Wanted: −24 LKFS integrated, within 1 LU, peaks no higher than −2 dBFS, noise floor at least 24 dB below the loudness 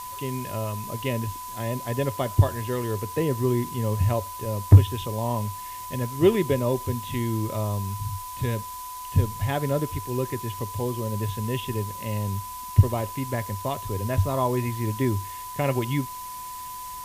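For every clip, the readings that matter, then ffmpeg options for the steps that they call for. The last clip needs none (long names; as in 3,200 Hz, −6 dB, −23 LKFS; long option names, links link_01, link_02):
interfering tone 1,000 Hz; level of the tone −35 dBFS; background noise floor −37 dBFS; target noise floor −51 dBFS; integrated loudness −26.5 LKFS; sample peak −3.5 dBFS; target loudness −24.0 LKFS
→ -af "bandreject=frequency=1000:width=30"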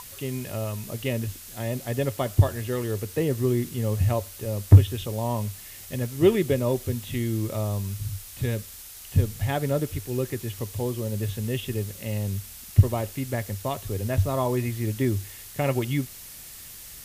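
interfering tone none found; background noise floor −43 dBFS; target noise floor −51 dBFS
→ -af "afftdn=noise_reduction=8:noise_floor=-43"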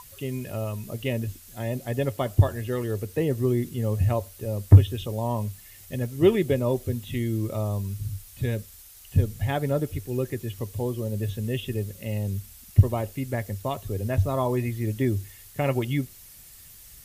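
background noise floor −48 dBFS; target noise floor −51 dBFS
→ -af "afftdn=noise_reduction=6:noise_floor=-48"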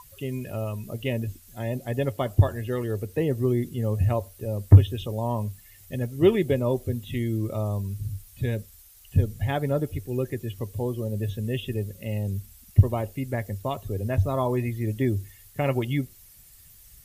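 background noise floor −52 dBFS; integrated loudness −26.5 LKFS; sample peak −3.5 dBFS; target loudness −24.0 LKFS
→ -af "volume=2.5dB,alimiter=limit=-2dB:level=0:latency=1"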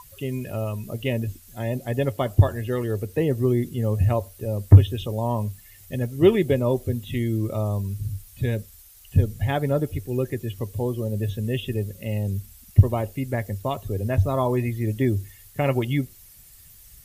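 integrated loudness −24.5 LKFS; sample peak −2.0 dBFS; background noise floor −49 dBFS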